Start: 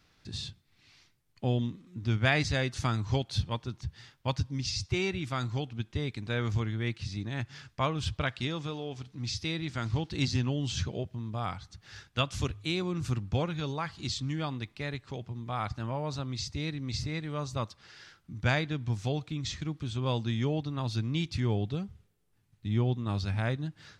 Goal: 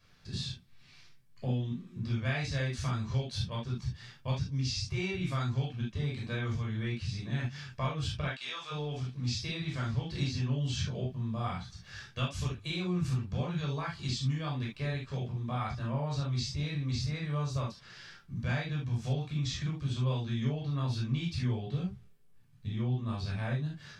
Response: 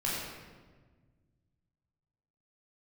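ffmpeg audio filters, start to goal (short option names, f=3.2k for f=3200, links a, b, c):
-filter_complex "[0:a]asplit=3[a][b][c];[a]afade=t=out:st=8.28:d=0.02[d];[b]highpass=940,afade=t=in:st=8.28:d=0.02,afade=t=out:st=8.7:d=0.02[e];[c]afade=t=in:st=8.7:d=0.02[f];[d][e][f]amix=inputs=3:normalize=0,acompressor=threshold=-33dB:ratio=5[g];[1:a]atrim=start_sample=2205,atrim=end_sample=3528[h];[g][h]afir=irnorm=-1:irlink=0,volume=-2.5dB"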